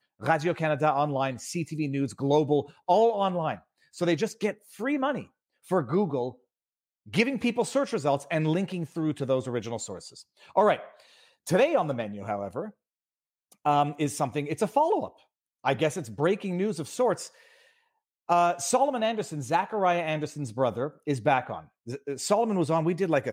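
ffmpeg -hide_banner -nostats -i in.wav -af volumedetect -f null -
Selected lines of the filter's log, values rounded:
mean_volume: -27.8 dB
max_volume: -9.8 dB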